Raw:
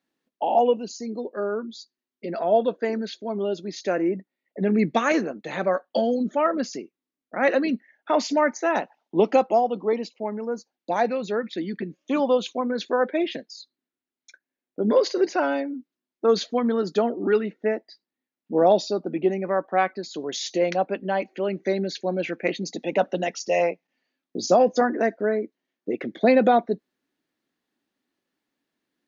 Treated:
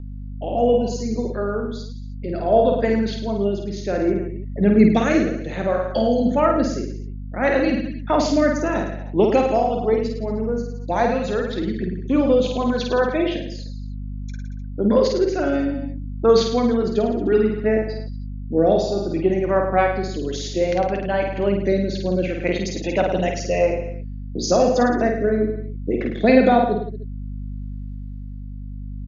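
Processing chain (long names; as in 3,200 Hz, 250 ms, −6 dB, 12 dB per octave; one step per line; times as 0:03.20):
low-shelf EQ 130 Hz +11 dB
reverse bouncing-ball delay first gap 50 ms, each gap 1.1×, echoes 5
mains hum 50 Hz, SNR 11 dB
rotating-speaker cabinet horn 0.6 Hz
level +3 dB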